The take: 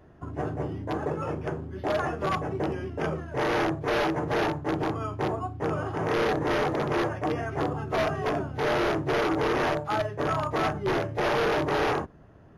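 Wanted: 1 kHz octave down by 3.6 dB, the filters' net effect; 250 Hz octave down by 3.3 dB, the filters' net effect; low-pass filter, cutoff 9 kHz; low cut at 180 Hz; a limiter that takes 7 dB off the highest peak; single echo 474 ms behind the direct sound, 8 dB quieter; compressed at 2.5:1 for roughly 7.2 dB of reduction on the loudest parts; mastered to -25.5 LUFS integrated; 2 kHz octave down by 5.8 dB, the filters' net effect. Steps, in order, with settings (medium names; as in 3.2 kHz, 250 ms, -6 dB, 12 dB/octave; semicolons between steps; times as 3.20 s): high-pass 180 Hz; low-pass 9 kHz; peaking EQ 250 Hz -3.5 dB; peaking EQ 1 kHz -3 dB; peaking EQ 2 kHz -6.5 dB; compression 2.5:1, threshold -36 dBFS; peak limiter -30.5 dBFS; delay 474 ms -8 dB; trim +13.5 dB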